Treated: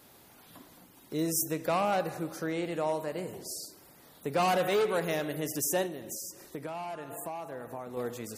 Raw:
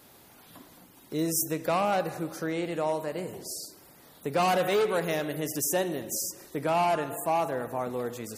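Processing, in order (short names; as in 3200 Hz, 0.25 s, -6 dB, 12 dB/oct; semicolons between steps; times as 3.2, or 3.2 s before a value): 5.86–7.97 compressor 10:1, threshold -34 dBFS, peak gain reduction 12 dB; gain -2 dB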